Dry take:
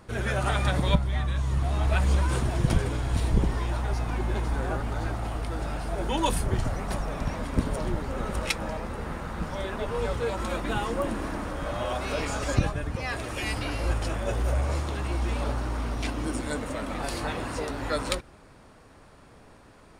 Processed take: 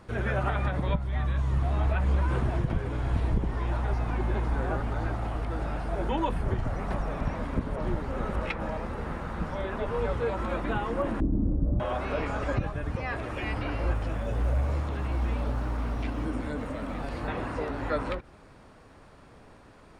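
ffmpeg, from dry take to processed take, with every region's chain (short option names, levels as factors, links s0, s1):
-filter_complex "[0:a]asettb=1/sr,asplit=3[s0][s1][s2];[s0]atrim=end=11.204[s3];[s1]atrim=start=11.2:end=11.8,asetpts=PTS-STARTPTS,afade=t=in:d=0.004:c=qsin,afade=t=out:st=0.596:d=0.004:c=qsin,lowpass=f=290:t=q:w=1.6,lowshelf=f=200:g=12,asplit=2[s4][s5];[s5]adelay=19,volume=0.224[s6];[s4][s6]amix=inputs=2:normalize=0,atrim=end_sample=26460[s7];[s2]atrim=start=11.796[s8];[s3][s7]acrossfade=d=0.004:c1=hsin:c2=qsin[s9];[s9][s8]acrossfade=d=0.004:c1=qsin:c2=hsin,asettb=1/sr,asplit=3[s10][s11][s12];[s10]atrim=end=13.954[s13];[s11]atrim=start=13.95:end=17.28,asetpts=PTS-STARTPTS,afade=t=in:d=0.004:c=qsin,afade=t=out:st=3.326:d=0.004:c=qsin,bandreject=f=360:w=8.5,acrossover=split=410|3000[s14][s15][s16];[s15]acompressor=threshold=0.0158:ratio=6:attack=3.2:release=140:knee=2.83:detection=peak[s17];[s14][s17][s16]amix=inputs=3:normalize=0,acrusher=bits=7:mode=log:mix=0:aa=0.000001[s18];[s12]atrim=start=17.276[s19];[s13][s18]acrossfade=d=0.004:c1=hsin:c2=qsin[s20];[s20][s19]acrossfade=d=0.004:c1=qsin:c2=hsin,acrossover=split=2700[s21][s22];[s22]acompressor=threshold=0.002:ratio=4:attack=1:release=60[s23];[s21][s23]amix=inputs=2:normalize=0,highshelf=f=6700:g=-8,alimiter=limit=0.141:level=0:latency=1:release=301"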